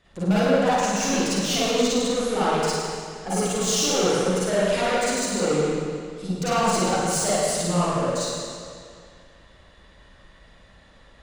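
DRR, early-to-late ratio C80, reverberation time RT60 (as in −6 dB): −11.0 dB, −2.5 dB, 2.2 s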